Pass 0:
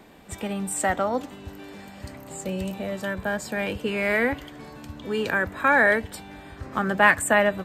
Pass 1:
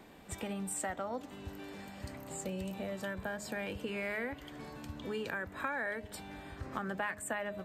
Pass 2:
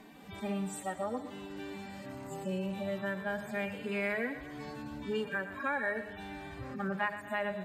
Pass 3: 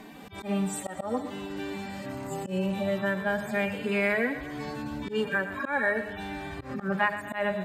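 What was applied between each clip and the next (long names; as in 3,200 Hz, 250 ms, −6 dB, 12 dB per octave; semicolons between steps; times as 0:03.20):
hum removal 207.9 Hz, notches 3; downward compressor 4 to 1, threshold −31 dBFS, peak gain reduction 16.5 dB; level −5 dB
harmonic-percussive split with one part muted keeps harmonic; feedback echo with a high-pass in the loop 120 ms, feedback 52%, level −12 dB; level +4.5 dB
volume swells 109 ms; level +7.5 dB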